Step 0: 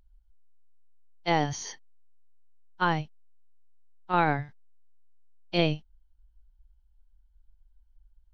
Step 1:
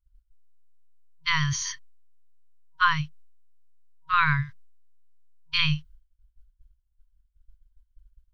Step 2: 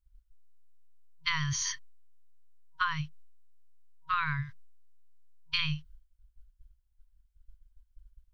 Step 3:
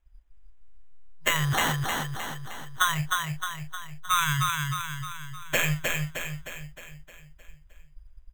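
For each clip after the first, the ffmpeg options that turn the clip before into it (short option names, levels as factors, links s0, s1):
-af "agate=range=0.0224:threshold=0.00355:ratio=3:detection=peak,afftfilt=real='re*(1-between(b*sr/4096,160,950))':imag='im*(1-between(b*sr/4096,160,950))':win_size=4096:overlap=0.75,volume=2.37"
-af "acompressor=threshold=0.0447:ratio=6"
-af "acrusher=samples=9:mix=1:aa=0.000001,aecho=1:1:309|618|927|1236|1545|1854|2163:0.668|0.348|0.181|0.094|0.0489|0.0254|0.0132,volume=2"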